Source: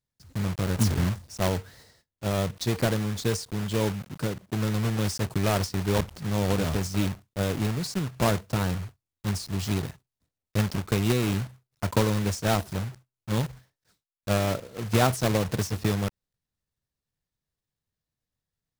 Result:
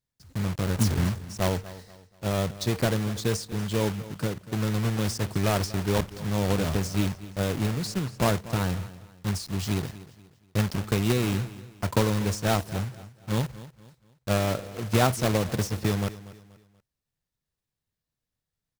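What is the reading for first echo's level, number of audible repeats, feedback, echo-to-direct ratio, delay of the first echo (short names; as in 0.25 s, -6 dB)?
-17.0 dB, 3, 36%, -16.5 dB, 0.24 s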